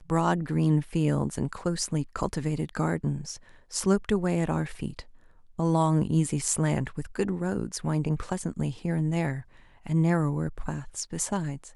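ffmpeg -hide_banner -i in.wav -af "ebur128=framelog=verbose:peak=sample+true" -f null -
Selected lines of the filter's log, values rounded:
Integrated loudness:
  I:         -28.1 LUFS
  Threshold: -38.5 LUFS
Loudness range:
  LRA:         2.2 LU
  Threshold: -48.6 LUFS
  LRA low:   -29.6 LUFS
  LRA high:  -27.5 LUFS
Sample peak:
  Peak:       -9.3 dBFS
True peak:
  Peak:       -9.3 dBFS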